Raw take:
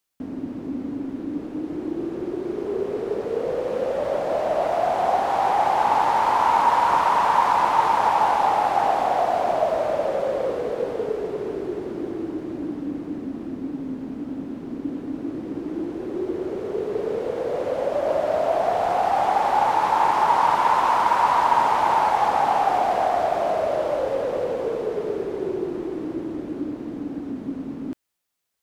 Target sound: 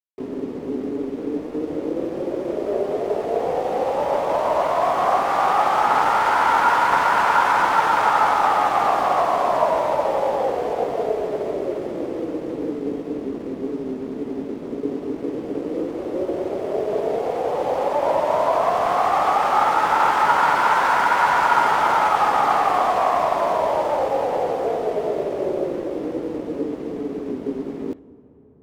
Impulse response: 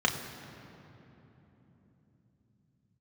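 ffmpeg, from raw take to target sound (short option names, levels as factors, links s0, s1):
-filter_complex "[0:a]asplit=2[s0][s1];[s1]asetrate=66075,aresample=44100,atempo=0.66742,volume=0.794[s2];[s0][s2]amix=inputs=2:normalize=0,aeval=exprs='sgn(val(0))*max(abs(val(0))-0.00501,0)':c=same,asplit=2[s3][s4];[1:a]atrim=start_sample=2205,asetrate=25137,aresample=44100[s5];[s4][s5]afir=irnorm=-1:irlink=0,volume=0.0447[s6];[s3][s6]amix=inputs=2:normalize=0"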